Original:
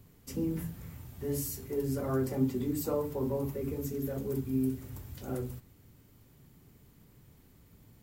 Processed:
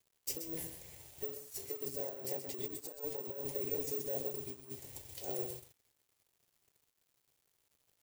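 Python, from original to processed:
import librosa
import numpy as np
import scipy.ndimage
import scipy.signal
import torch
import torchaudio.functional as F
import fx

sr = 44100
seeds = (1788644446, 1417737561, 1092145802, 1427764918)

p1 = fx.riaa(x, sr, side='recording')
p2 = fx.quant_companded(p1, sr, bits=6)
p3 = fx.high_shelf(p2, sr, hz=4600.0, db=-10.5)
p4 = fx.over_compress(p3, sr, threshold_db=-40.0, ratio=-0.5)
p5 = fx.fixed_phaser(p4, sr, hz=530.0, stages=4)
p6 = p5 + fx.echo_single(p5, sr, ms=128, db=-8.5, dry=0)
p7 = (np.kron(scipy.signal.resample_poly(p6, 1, 2), np.eye(2)[0]) * 2)[:len(p6)]
p8 = np.sign(p7) * np.maximum(np.abs(p7) - 10.0 ** (-54.0 / 20.0), 0.0)
y = F.gain(torch.from_numpy(p8), 1.5).numpy()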